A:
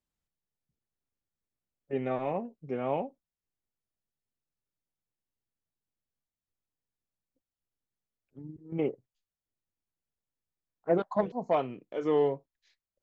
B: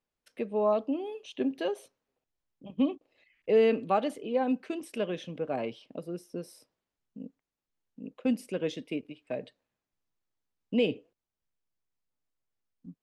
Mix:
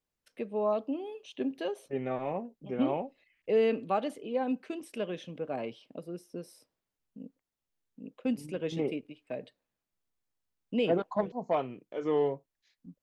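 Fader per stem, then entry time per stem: -2.0 dB, -3.0 dB; 0.00 s, 0.00 s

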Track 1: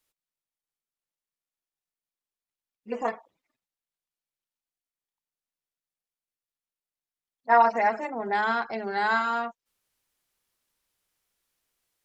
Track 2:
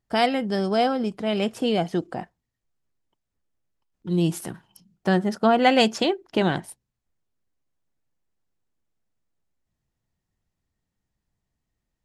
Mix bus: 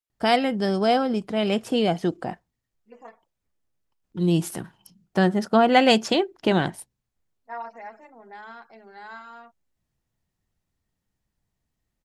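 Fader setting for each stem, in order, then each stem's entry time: -16.5 dB, +1.0 dB; 0.00 s, 0.10 s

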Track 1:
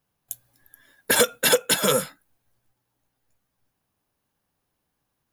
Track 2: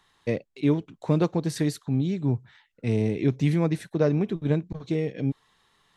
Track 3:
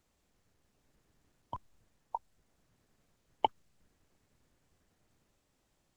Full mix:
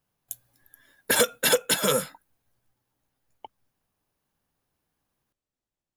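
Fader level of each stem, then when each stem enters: -2.5 dB, mute, -15.5 dB; 0.00 s, mute, 0.00 s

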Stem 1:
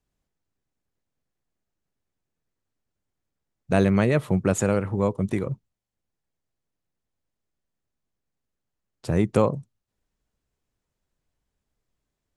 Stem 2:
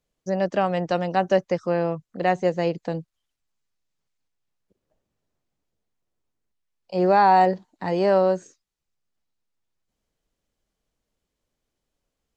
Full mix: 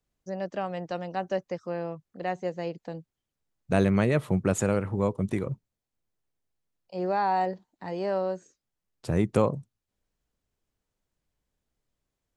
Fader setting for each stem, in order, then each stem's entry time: -3.0 dB, -9.5 dB; 0.00 s, 0.00 s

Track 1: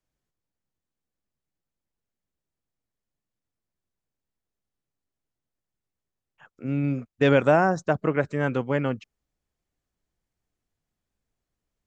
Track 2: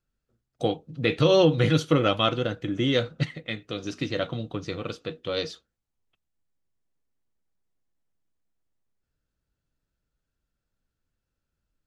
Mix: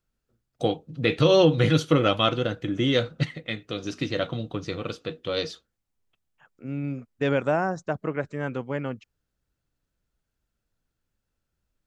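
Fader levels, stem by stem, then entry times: -5.0 dB, +1.0 dB; 0.00 s, 0.00 s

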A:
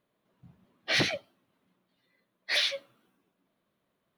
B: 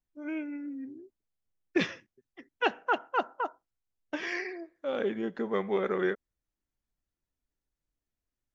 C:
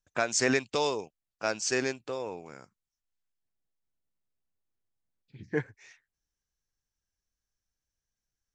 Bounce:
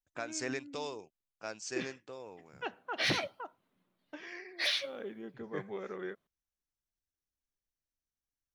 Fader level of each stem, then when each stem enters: -4.5 dB, -12.0 dB, -11.5 dB; 2.10 s, 0.00 s, 0.00 s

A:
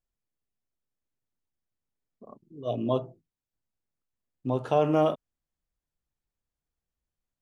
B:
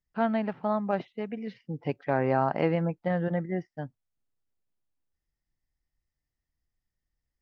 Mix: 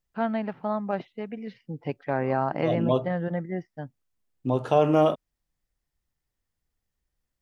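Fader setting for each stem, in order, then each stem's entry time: +3.0 dB, -0.5 dB; 0.00 s, 0.00 s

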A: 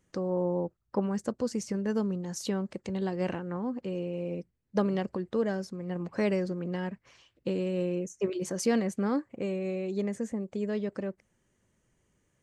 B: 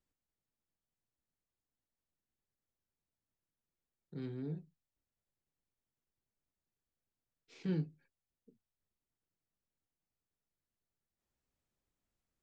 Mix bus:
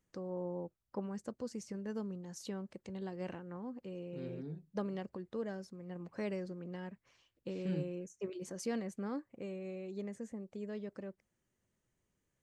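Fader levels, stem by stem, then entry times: -11.0 dB, -3.5 dB; 0.00 s, 0.00 s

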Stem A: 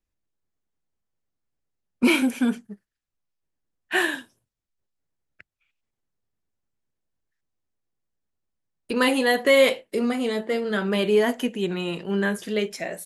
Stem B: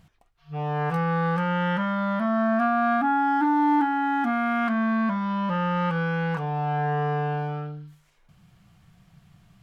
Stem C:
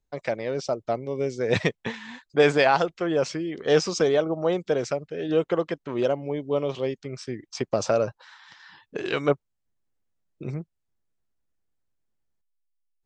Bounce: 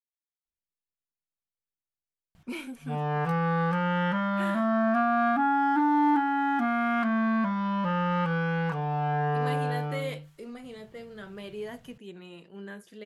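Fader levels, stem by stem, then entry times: -18.0 dB, -2.0 dB, mute; 0.45 s, 2.35 s, mute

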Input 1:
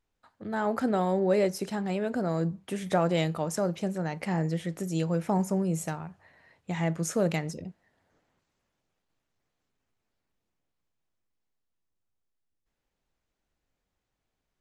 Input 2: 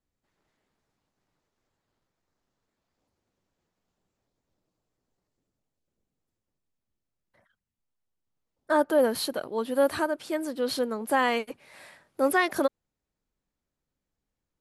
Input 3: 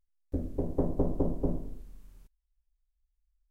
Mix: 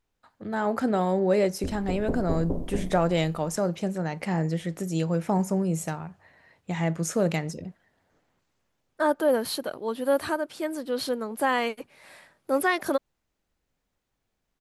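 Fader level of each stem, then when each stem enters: +2.0 dB, -0.5 dB, -1.0 dB; 0.00 s, 0.30 s, 1.30 s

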